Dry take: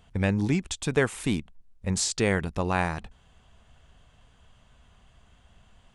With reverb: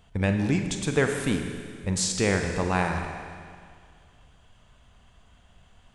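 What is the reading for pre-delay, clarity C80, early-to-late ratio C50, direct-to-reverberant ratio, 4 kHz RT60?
38 ms, 6.0 dB, 5.0 dB, 4.0 dB, 2.0 s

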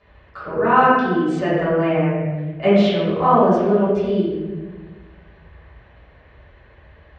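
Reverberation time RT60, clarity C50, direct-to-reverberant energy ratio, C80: 1.4 s, -2.0 dB, -12.5 dB, 0.5 dB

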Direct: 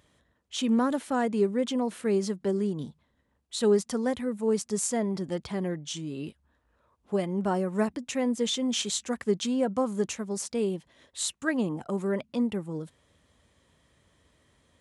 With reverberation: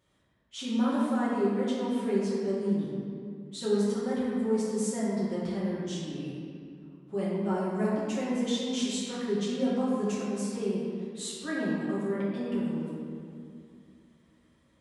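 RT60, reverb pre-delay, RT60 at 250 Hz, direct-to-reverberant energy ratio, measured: 2.4 s, 5 ms, 3.1 s, -9.5 dB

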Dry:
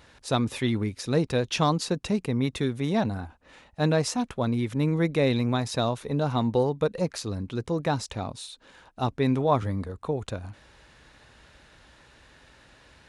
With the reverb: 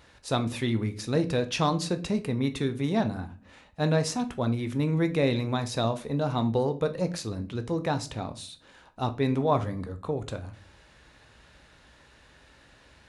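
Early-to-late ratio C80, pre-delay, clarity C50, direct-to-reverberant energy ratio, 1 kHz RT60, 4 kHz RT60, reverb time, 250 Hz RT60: 21.0 dB, 15 ms, 16.0 dB, 9.0 dB, 0.35 s, 0.30 s, 0.40 s, 0.75 s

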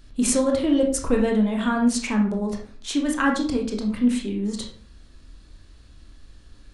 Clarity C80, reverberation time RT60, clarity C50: 12.0 dB, 0.45 s, 6.5 dB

